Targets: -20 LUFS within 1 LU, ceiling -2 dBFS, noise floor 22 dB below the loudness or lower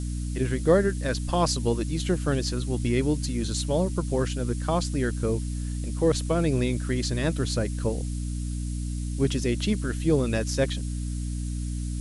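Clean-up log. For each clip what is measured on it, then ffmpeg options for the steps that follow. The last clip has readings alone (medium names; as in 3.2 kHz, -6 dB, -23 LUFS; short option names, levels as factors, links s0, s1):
hum 60 Hz; highest harmonic 300 Hz; hum level -28 dBFS; noise floor -31 dBFS; noise floor target -49 dBFS; loudness -27.0 LUFS; peak level -8.5 dBFS; loudness target -20.0 LUFS
-> -af "bandreject=f=60:t=h:w=4,bandreject=f=120:t=h:w=4,bandreject=f=180:t=h:w=4,bandreject=f=240:t=h:w=4,bandreject=f=300:t=h:w=4"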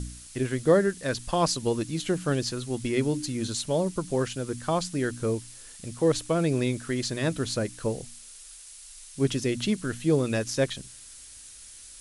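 hum not found; noise floor -47 dBFS; noise floor target -50 dBFS
-> -af "afftdn=nr=6:nf=-47"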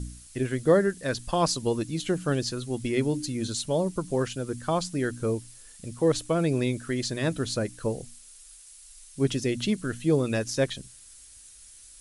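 noise floor -50 dBFS; loudness -27.5 LUFS; peak level -10.0 dBFS; loudness target -20.0 LUFS
-> -af "volume=2.37"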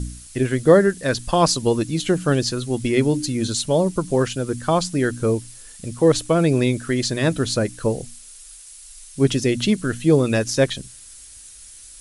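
loudness -20.0 LUFS; peak level -2.5 dBFS; noise floor -43 dBFS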